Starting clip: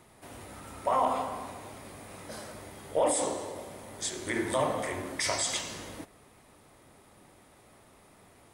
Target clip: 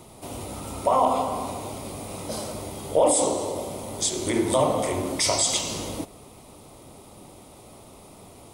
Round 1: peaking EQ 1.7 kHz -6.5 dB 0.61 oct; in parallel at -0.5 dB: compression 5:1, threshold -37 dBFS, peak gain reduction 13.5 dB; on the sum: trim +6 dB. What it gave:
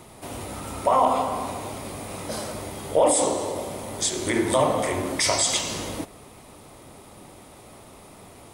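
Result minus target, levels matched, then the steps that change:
2 kHz band +4.5 dB
change: peaking EQ 1.7 kHz -16.5 dB 0.61 oct

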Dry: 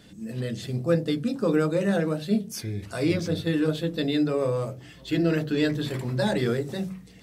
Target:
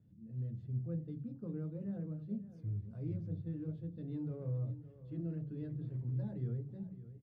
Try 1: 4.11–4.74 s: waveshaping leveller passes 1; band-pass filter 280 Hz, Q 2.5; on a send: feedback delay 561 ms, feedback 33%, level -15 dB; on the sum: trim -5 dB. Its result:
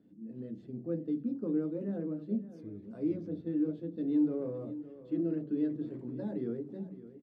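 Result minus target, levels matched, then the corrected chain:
125 Hz band -12.5 dB
4.11–4.74 s: waveshaping leveller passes 1; band-pass filter 110 Hz, Q 2.5; on a send: feedback delay 561 ms, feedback 33%, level -15 dB; on the sum: trim -5 dB

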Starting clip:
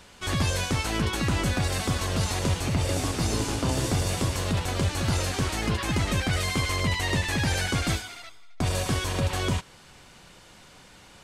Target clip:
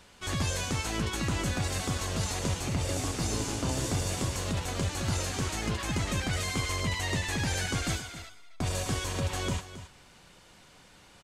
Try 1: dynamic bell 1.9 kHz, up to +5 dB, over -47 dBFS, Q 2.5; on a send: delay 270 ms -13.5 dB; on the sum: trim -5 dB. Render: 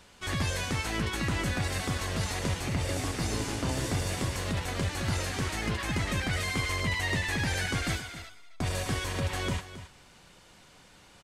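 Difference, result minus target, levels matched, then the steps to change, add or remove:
8 kHz band -3.5 dB
change: dynamic bell 6.9 kHz, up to +5 dB, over -47 dBFS, Q 2.5

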